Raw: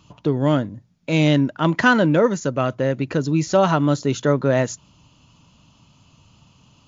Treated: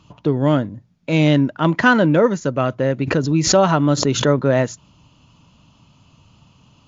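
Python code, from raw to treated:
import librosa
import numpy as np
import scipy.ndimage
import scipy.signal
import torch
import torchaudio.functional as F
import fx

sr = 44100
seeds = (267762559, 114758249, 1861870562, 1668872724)

y = fx.high_shelf(x, sr, hz=6200.0, db=-9.0)
y = fx.pre_swell(y, sr, db_per_s=82.0, at=(3.02, 4.38), fade=0.02)
y = F.gain(torch.from_numpy(y), 2.0).numpy()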